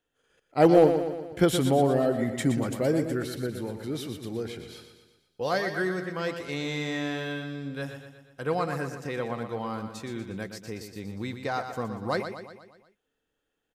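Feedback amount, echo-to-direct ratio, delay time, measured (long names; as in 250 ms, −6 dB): 54%, −7.0 dB, 120 ms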